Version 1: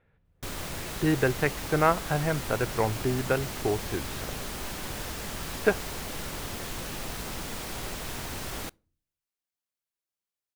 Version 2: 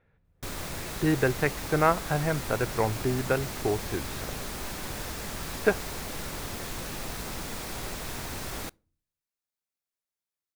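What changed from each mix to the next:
master: add parametric band 3,000 Hz −3.5 dB 0.23 octaves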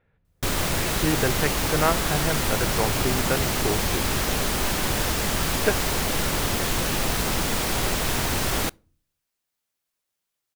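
background +11.5 dB
master: add parametric band 3,000 Hz +3.5 dB 0.23 octaves

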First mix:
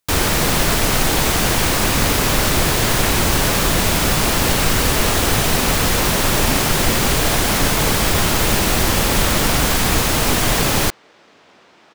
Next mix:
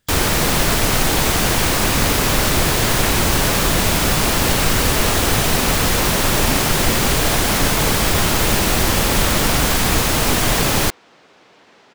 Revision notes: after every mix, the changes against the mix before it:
speech: unmuted
second sound: entry −2.80 s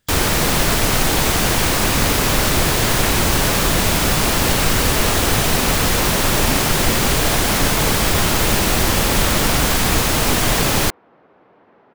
second sound: add low-pass filter 1,200 Hz 12 dB per octave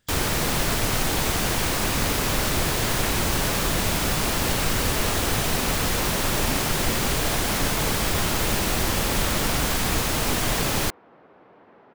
first sound −7.0 dB

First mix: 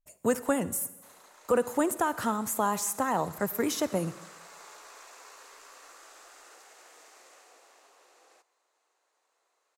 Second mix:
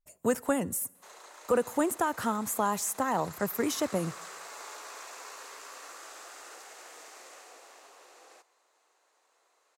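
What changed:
speech: send −10.5 dB
background +5.5 dB

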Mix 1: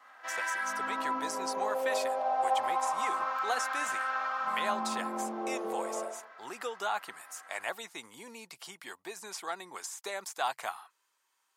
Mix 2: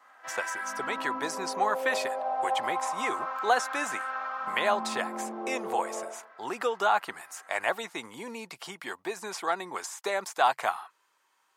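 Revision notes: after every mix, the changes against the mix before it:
speech +9.5 dB
master: add high-shelf EQ 3,200 Hz −9.5 dB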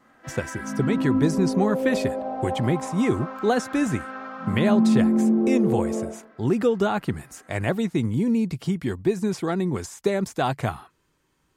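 master: remove high-pass with resonance 880 Hz, resonance Q 1.6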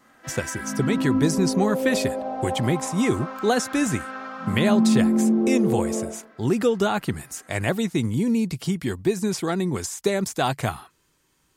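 master: add high-shelf EQ 3,200 Hz +9.5 dB

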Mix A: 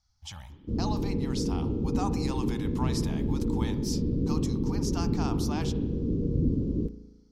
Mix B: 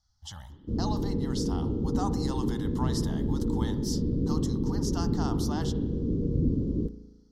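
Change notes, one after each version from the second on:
master: add Butterworth band-reject 2,400 Hz, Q 2.8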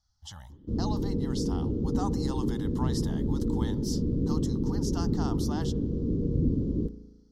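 speech: send −11.0 dB

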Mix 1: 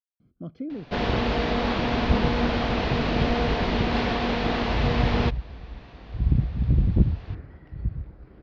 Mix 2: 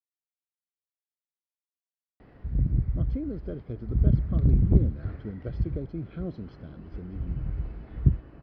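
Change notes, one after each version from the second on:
speech: entry +2.55 s
first sound: muted
second sound: entry −2.25 s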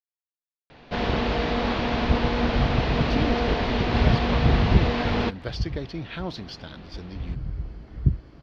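speech: remove moving average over 48 samples
first sound: unmuted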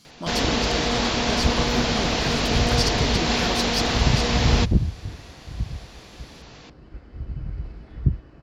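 speech: entry −2.75 s
first sound: entry −0.65 s
master: remove high-frequency loss of the air 320 metres

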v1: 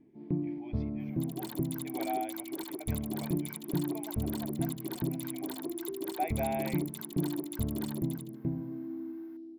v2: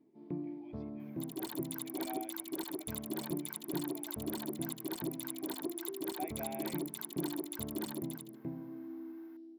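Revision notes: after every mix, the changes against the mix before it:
speech −10.0 dB
first sound: add high-pass filter 520 Hz 6 dB per octave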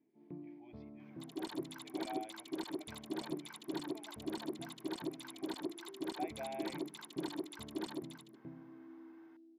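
first sound −9.0 dB
master: add low-pass filter 5,900 Hz 12 dB per octave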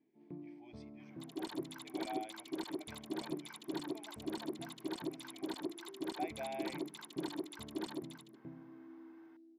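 speech: remove high-frequency loss of the air 280 metres

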